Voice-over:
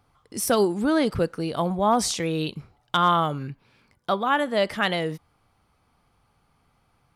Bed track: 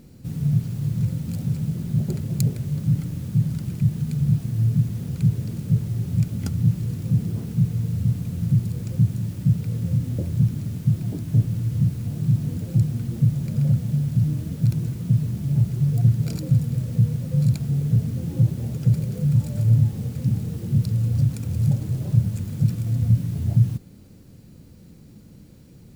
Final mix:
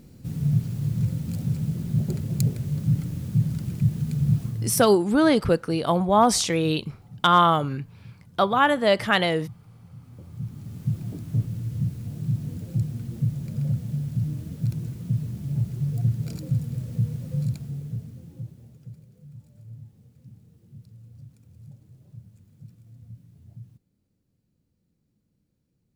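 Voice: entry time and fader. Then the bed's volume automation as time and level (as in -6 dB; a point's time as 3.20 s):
4.30 s, +3.0 dB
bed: 4.44 s -1.5 dB
5.04 s -23.5 dB
9.93 s -23.5 dB
10.86 s -6 dB
17.35 s -6 dB
19.10 s -26 dB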